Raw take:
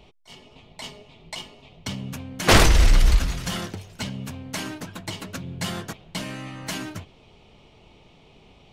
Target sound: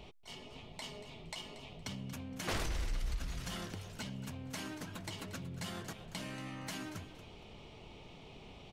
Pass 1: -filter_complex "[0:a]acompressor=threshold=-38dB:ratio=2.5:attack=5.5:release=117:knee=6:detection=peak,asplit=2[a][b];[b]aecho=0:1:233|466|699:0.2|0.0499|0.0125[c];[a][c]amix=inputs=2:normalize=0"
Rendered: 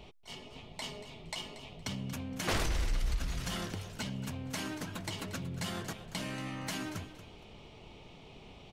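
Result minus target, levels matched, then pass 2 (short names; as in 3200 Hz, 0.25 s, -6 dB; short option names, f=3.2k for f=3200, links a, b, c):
compressor: peak gain reduction -5 dB
-filter_complex "[0:a]acompressor=threshold=-46dB:ratio=2.5:attack=5.5:release=117:knee=6:detection=peak,asplit=2[a][b];[b]aecho=0:1:233|466|699:0.2|0.0499|0.0125[c];[a][c]amix=inputs=2:normalize=0"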